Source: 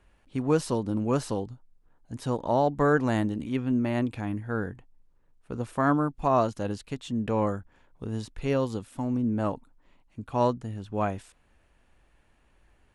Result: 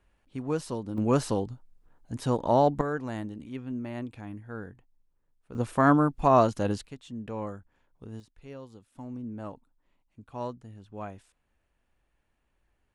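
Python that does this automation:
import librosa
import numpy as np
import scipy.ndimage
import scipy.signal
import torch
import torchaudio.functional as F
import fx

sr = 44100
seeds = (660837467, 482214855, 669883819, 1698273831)

y = fx.gain(x, sr, db=fx.steps((0.0, -6.0), (0.98, 2.0), (2.81, -9.0), (5.55, 3.0), (6.87, -9.0), (8.2, -17.5), (8.95, -11.0)))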